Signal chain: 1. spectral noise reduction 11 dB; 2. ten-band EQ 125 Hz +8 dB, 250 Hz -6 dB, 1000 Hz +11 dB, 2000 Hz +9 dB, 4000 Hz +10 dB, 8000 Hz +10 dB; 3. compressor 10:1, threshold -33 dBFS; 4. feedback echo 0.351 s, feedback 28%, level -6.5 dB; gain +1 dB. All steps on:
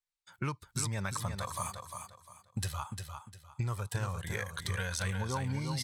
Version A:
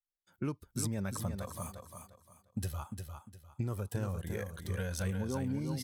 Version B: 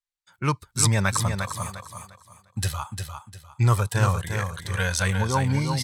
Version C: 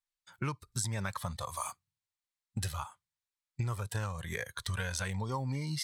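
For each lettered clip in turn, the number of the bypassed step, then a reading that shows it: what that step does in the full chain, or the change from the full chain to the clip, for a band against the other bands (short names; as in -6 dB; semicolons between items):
2, crest factor change -2.0 dB; 3, mean gain reduction 9.0 dB; 4, momentary loudness spread change -5 LU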